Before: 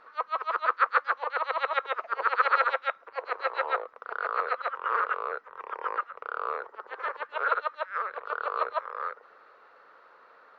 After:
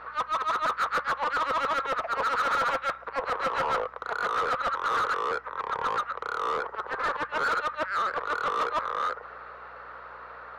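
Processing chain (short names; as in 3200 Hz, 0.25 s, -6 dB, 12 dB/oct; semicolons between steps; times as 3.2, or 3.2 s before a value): overdrive pedal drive 30 dB, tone 1700 Hz, clips at -8.5 dBFS; hum 60 Hz, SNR 33 dB; gain -8.5 dB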